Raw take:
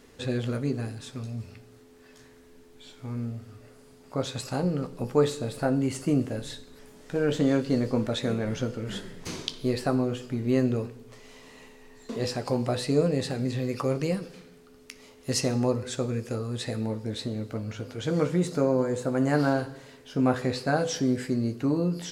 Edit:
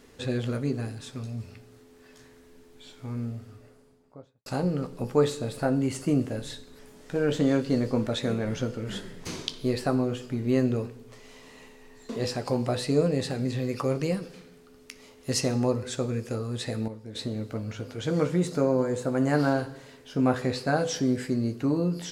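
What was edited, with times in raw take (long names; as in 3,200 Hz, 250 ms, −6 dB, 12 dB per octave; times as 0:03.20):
0:03.32–0:04.46: fade out and dull
0:16.88–0:17.15: clip gain −9 dB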